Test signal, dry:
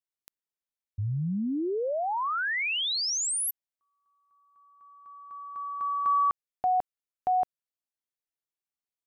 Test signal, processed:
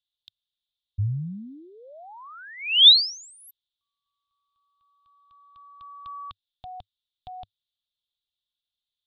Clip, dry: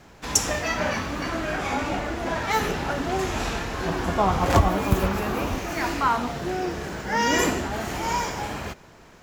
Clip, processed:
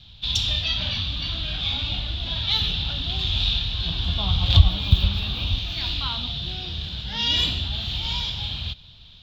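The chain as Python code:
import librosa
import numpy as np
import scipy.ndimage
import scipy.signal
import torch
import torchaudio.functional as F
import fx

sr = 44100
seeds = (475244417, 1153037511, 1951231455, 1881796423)

y = fx.curve_eq(x, sr, hz=(100.0, 390.0, 660.0, 2000.0, 3600.0, 6100.0, 9200.0, 14000.0), db=(0, -27, -22, -20, 14, -19, -30, -21))
y = y * librosa.db_to_amplitude(7.0)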